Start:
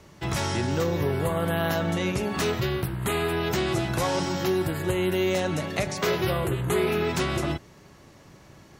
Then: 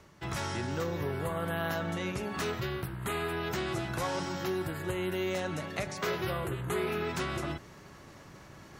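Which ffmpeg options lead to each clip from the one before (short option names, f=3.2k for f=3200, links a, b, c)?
-af "equalizer=f=1.4k:w=1.3:g=4.5,areverse,acompressor=mode=upward:threshold=-33dB:ratio=2.5,areverse,volume=-8.5dB"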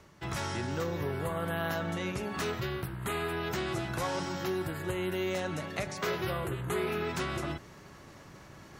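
-af anull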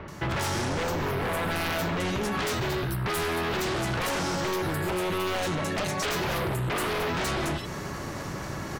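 -filter_complex "[0:a]acrossover=split=3000[a][b];[b]adelay=80[c];[a][c]amix=inputs=2:normalize=0,aeval=exprs='0.1*sin(PI/2*4.47*val(0)/0.1)':c=same,acompressor=threshold=-27dB:ratio=6"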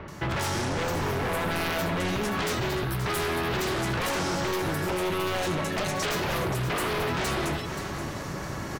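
-af "aecho=1:1:527:0.316"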